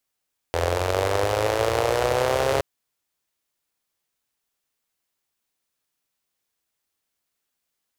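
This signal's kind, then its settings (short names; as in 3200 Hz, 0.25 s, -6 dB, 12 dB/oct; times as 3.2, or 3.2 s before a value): four-cylinder engine model, changing speed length 2.07 s, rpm 2500, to 4100, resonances 84/500 Hz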